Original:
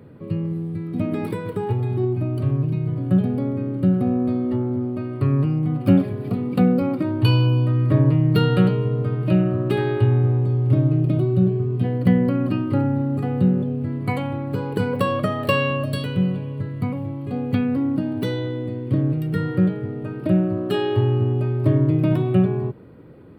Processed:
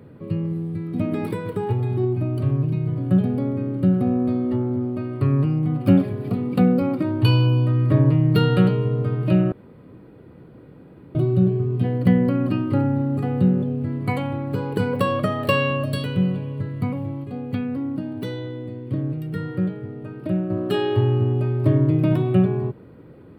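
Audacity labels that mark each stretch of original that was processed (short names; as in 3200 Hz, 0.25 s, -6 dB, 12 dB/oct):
9.520000	11.150000	room tone
17.240000	20.500000	gain -5 dB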